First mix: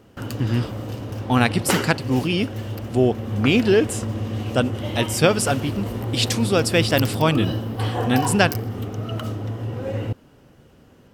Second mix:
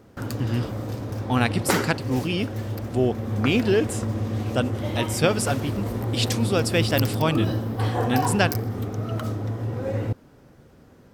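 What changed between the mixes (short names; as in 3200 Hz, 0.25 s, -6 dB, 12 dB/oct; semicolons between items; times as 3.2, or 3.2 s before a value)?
speech -4.0 dB; background: add bell 2900 Hz -10.5 dB 0.24 oct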